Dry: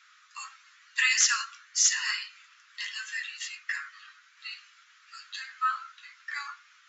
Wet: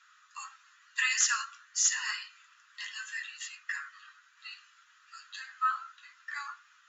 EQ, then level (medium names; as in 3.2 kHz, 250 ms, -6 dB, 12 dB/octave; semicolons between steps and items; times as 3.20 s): tilt EQ -3 dB/octave; peaking EQ 6.9 kHz +8.5 dB 0.2 oct; band-stop 2.2 kHz, Q 7; 0.0 dB